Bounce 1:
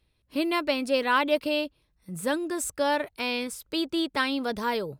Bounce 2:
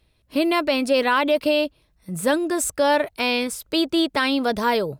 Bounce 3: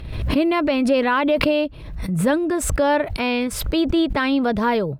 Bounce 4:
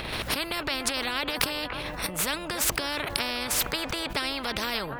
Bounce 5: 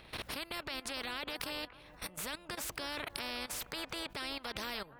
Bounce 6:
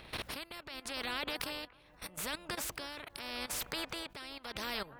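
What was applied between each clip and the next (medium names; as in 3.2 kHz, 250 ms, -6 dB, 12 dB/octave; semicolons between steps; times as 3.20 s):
peaking EQ 650 Hz +5 dB 0.28 oct; peak limiter -17 dBFS, peak gain reduction 7 dB; trim +7 dB
tone controls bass +8 dB, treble -13 dB; swell ahead of each attack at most 49 dB/s
feedback echo behind a band-pass 290 ms, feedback 50%, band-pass 700 Hz, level -16.5 dB; spectrum-flattening compressor 4:1
level held to a coarse grid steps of 16 dB; trim -8 dB
tremolo 0.82 Hz, depth 67%; trim +3 dB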